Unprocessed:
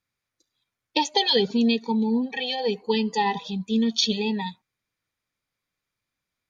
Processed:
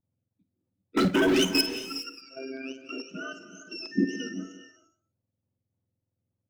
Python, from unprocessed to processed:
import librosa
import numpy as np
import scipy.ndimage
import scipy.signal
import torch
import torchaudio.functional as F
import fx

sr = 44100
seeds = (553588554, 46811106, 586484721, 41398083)

y = fx.octave_mirror(x, sr, pivot_hz=1100.0)
y = fx.bass_treble(y, sr, bass_db=6, treble_db=-4)
y = fx.leveller(y, sr, passes=5, at=(0.97, 1.61))
y = fx.level_steps(y, sr, step_db=15)
y = fx.echo_multitap(y, sr, ms=(54, 176), db=(-13.0, -17.5))
y = fx.robotise(y, sr, hz=133.0, at=(2.13, 2.78))
y = fx.filter_lfo_notch(y, sr, shape='square', hz=3.5, low_hz=980.0, high_hz=4300.0, q=2.3)
y = fx.dmg_tone(y, sr, hz=1800.0, level_db=-33.0, at=(3.91, 4.32), fade=0.02)
y = fx.rev_gated(y, sr, seeds[0], gate_ms=440, shape='rising', drr_db=11.5)
y = y * 10.0 ** (-6.5 / 20.0)